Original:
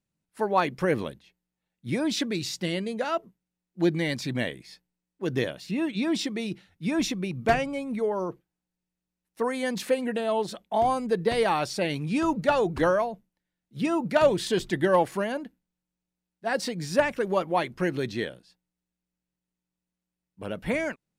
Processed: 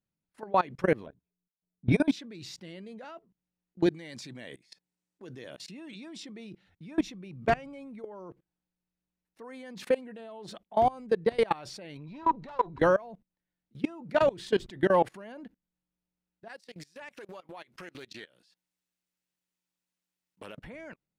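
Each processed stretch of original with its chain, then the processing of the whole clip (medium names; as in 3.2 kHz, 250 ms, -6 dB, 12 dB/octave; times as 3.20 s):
1.06–2.12 s: level-controlled noise filter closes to 470 Hz, open at -24.5 dBFS + rippled EQ curve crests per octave 1.6, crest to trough 11 dB + transient shaper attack +11 dB, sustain -9 dB
3.86–6.23 s: high-pass 170 Hz 6 dB/octave + peaking EQ 8 kHz +9 dB 1.5 oct
11.97–12.79 s: distance through air 99 m + valve stage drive 23 dB, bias 0.75 + small resonant body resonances 980/3900 Hz, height 18 dB, ringing for 60 ms
16.48–20.58 s: tilt EQ +3.5 dB/octave + compression 12:1, threshold -38 dBFS + loudspeaker Doppler distortion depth 0.22 ms
whole clip: treble shelf 6.4 kHz -11.5 dB; level held to a coarse grid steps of 23 dB; trim +2 dB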